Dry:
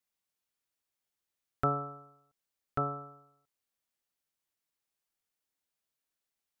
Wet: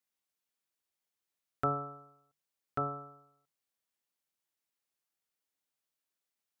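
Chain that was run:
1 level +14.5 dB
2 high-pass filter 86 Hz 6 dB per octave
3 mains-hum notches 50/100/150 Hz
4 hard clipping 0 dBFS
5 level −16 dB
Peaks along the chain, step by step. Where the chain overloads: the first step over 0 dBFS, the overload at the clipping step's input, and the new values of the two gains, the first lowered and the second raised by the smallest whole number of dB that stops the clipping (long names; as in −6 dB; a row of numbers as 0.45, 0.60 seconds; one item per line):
−0.5, −2.0, −2.0, −2.0, −18.0 dBFS
no step passes full scale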